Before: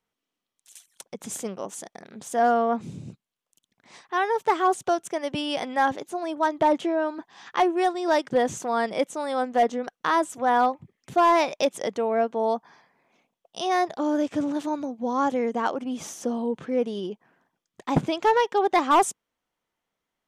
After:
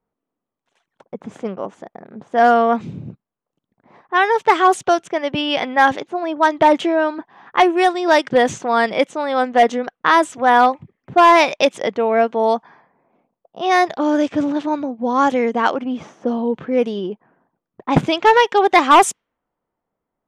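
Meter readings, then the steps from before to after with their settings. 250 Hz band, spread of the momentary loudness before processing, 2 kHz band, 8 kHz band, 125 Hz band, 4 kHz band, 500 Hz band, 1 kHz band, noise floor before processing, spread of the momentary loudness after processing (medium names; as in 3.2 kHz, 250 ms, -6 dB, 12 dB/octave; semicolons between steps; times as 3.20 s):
+7.0 dB, 13 LU, +11.5 dB, +4.5 dB, +7.0 dB, +10.0 dB, +7.5 dB, +8.5 dB, under -85 dBFS, 12 LU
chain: level-controlled noise filter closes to 940 Hz, open at -18 dBFS; dynamic bell 2.4 kHz, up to +6 dB, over -38 dBFS, Q 0.78; trim +7 dB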